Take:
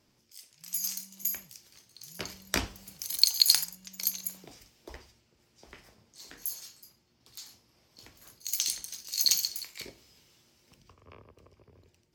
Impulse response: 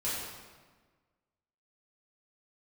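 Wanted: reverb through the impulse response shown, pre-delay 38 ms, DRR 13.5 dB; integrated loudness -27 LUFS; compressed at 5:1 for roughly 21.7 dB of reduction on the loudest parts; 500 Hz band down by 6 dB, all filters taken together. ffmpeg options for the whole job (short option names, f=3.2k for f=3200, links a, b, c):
-filter_complex "[0:a]equalizer=f=500:t=o:g=-8.5,acompressor=threshold=-42dB:ratio=5,asplit=2[a][b];[1:a]atrim=start_sample=2205,adelay=38[c];[b][c]afir=irnorm=-1:irlink=0,volume=-19.5dB[d];[a][d]amix=inputs=2:normalize=0,volume=18.5dB"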